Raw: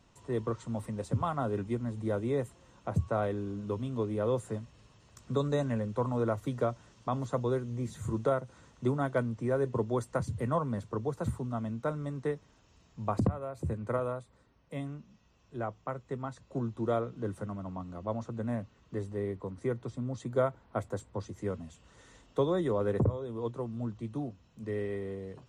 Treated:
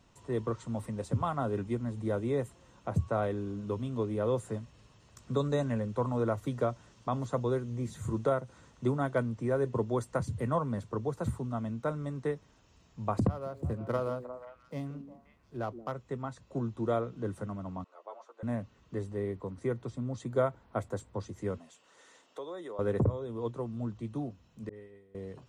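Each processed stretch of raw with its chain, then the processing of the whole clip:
13.28–15.92 s: median filter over 15 samples + repeats whose band climbs or falls 177 ms, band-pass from 300 Hz, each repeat 1.4 oct, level -6 dB
17.84–18.43 s: Bessel high-pass 830 Hz, order 6 + tilt EQ -3 dB/octave + three-phase chorus
21.58–22.79 s: high-pass 420 Hz + compression 2:1, threshold -45 dBFS
24.69–25.15 s: expander -24 dBFS + phase dispersion highs, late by 41 ms, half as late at 1.9 kHz
whole clip: none

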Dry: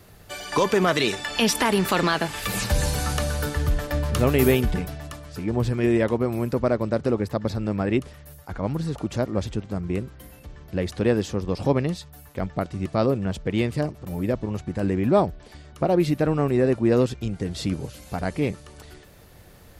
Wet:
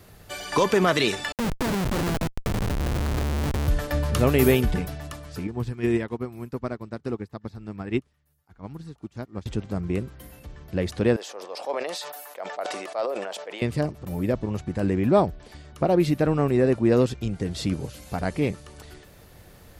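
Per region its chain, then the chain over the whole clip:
1.32–3.68 s: low-pass 1.2 kHz + Schmitt trigger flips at -27 dBFS
5.47–9.46 s: peaking EQ 560 Hz -9 dB 0.41 oct + upward expansion 2.5:1, over -35 dBFS
11.16–13.62 s: ladder high-pass 510 Hz, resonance 40% + hard clipper -18.5 dBFS + decay stretcher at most 31 dB/s
whole clip: none

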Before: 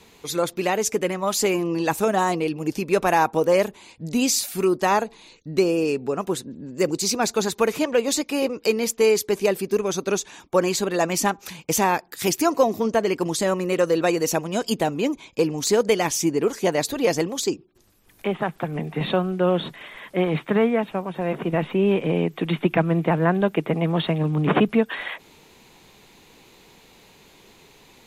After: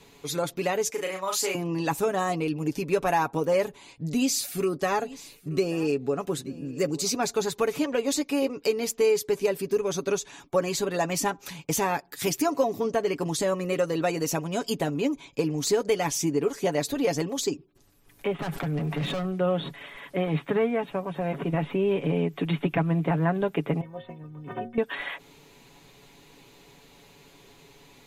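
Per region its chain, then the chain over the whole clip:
0.90–1.55 s: high-pass 950 Hz 6 dB/octave + doubling 37 ms -4 dB
4.10–7.17 s: band-stop 930 Hz, Q 6.8 + delay 880 ms -21.5 dB
18.39–19.25 s: hard clipper -26 dBFS + level flattener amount 70%
23.81–24.78 s: block-companded coder 7-bit + treble shelf 2.6 kHz -12 dB + inharmonic resonator 110 Hz, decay 0.41 s, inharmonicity 0.03
whole clip: bass shelf 390 Hz +3 dB; comb 7.1 ms, depth 55%; compression 1.5:1, threshold -22 dBFS; trim -4 dB

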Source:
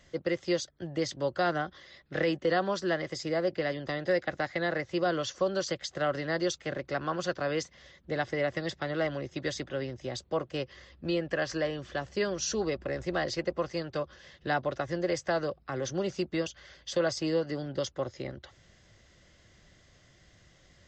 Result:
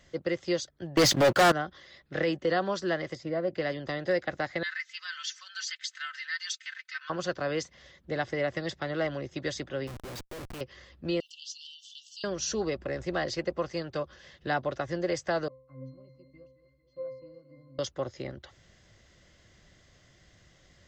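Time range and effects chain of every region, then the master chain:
0.97–1.52 s: high-pass 93 Hz + waveshaping leveller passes 5
3.15–3.55 s: low-pass 1.5 kHz 6 dB/octave + comb of notches 420 Hz
4.63–7.10 s: steep high-pass 1.5 kHz + comb 3.9 ms, depth 76%
9.87–10.61 s: peaking EQ 360 Hz +2.5 dB 0.6 oct + compression 3:1, threshold -35 dBFS + Schmitt trigger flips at -45.5 dBFS
11.20–12.24 s: Chebyshev high-pass 2.8 kHz, order 10 + comb 2.6 ms, depth 55% + upward compressor, threshold -43 dBFS
15.48–17.79 s: pitch-class resonator C, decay 0.63 s + modulated delay 222 ms, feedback 57%, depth 58 cents, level -15 dB
whole clip: none

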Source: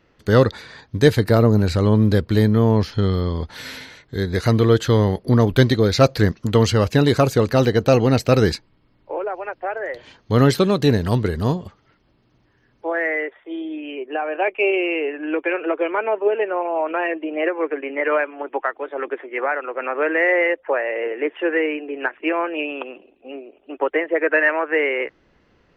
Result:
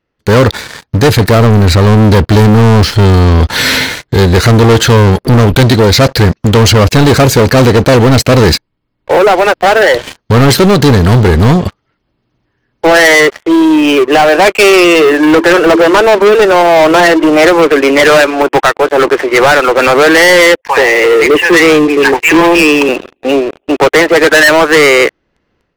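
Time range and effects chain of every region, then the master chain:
14.84–17.33 s: Butterworth band-stop 2.4 kHz, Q 4.4 + de-hum 55.59 Hz, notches 6
20.61–22.89 s: static phaser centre 920 Hz, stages 8 + bands offset in time highs, lows 80 ms, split 820 Hz
whole clip: level rider gain up to 10 dB; waveshaping leveller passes 5; trim -1 dB

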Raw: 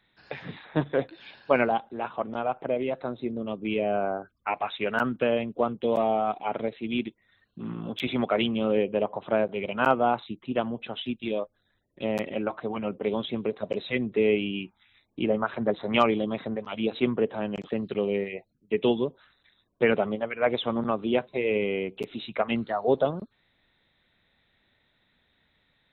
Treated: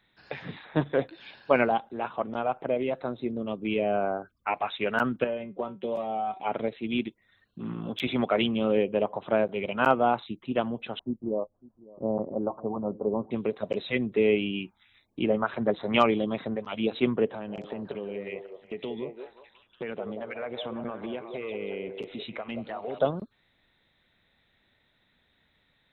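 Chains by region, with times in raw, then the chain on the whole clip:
5.24–6.40 s: treble shelf 3.6 kHz -7.5 dB + feedback comb 190 Hz, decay 0.16 s, mix 80% + three bands compressed up and down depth 100%
10.99–13.31 s: steep low-pass 1.1 kHz 48 dB/octave + delay 552 ms -21.5 dB
17.29–22.99 s: compression 5:1, threshold -32 dBFS + distance through air 53 m + repeats whose band climbs or falls 181 ms, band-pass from 500 Hz, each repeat 0.7 oct, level -3 dB
whole clip: none

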